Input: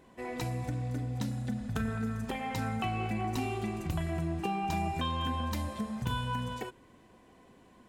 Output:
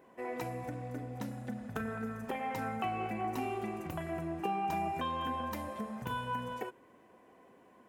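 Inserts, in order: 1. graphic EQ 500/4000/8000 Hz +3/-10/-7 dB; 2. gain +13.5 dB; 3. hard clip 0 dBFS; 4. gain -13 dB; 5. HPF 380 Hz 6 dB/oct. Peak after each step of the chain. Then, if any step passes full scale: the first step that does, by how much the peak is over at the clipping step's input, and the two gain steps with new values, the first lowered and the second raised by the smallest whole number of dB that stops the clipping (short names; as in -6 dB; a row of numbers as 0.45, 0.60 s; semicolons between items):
-19.0, -5.5, -5.5, -18.5, -20.0 dBFS; no overload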